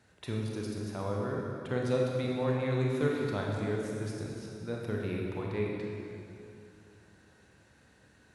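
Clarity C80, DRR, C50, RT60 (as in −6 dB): 1.0 dB, −2.0 dB, −0.5 dB, 2.7 s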